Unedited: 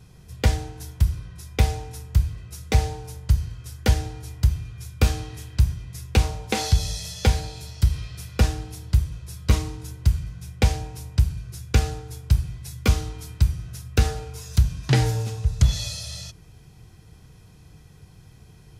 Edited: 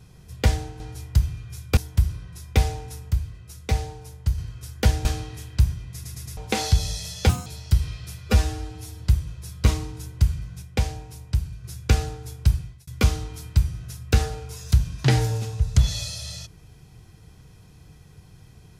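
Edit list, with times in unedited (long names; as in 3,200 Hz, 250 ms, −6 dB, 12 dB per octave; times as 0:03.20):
0:02.13–0:03.41: clip gain −4 dB
0:04.08–0:05.05: move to 0:00.80
0:05.93: stutter in place 0.11 s, 4 plays
0:07.29–0:07.57: play speed 162%
0:08.33–0:08.85: time-stretch 1.5×
0:10.47–0:11.49: clip gain −4 dB
0:12.40–0:12.72: fade out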